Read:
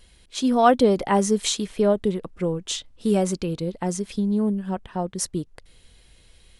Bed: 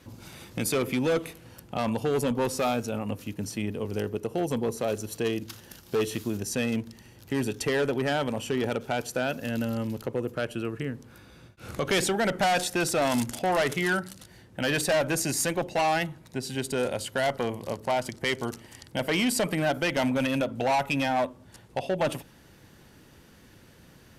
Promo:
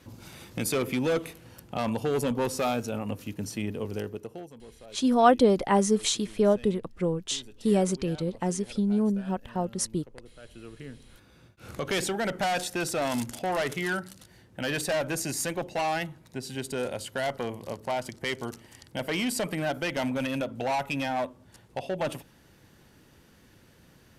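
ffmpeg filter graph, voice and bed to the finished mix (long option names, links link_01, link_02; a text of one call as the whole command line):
ffmpeg -i stem1.wav -i stem2.wav -filter_complex "[0:a]adelay=4600,volume=-2.5dB[link_01];[1:a]volume=16dB,afade=type=out:start_time=3.83:duration=0.68:silence=0.105925,afade=type=in:start_time=10.39:duration=1.23:silence=0.141254[link_02];[link_01][link_02]amix=inputs=2:normalize=0" out.wav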